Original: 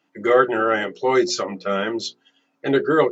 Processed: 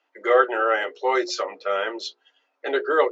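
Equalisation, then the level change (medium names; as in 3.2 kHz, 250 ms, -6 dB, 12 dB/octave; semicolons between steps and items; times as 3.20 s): high-pass 440 Hz 24 dB/octave; distance through air 98 m; 0.0 dB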